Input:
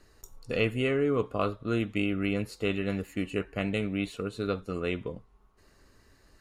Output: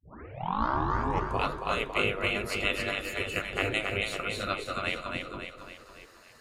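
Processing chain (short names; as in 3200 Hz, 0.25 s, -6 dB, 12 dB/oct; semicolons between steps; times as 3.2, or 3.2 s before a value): tape start at the beginning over 1.43 s; split-band echo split 350 Hz, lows 0.364 s, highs 0.276 s, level -4.5 dB; spectral gate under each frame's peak -10 dB weak; gain +6.5 dB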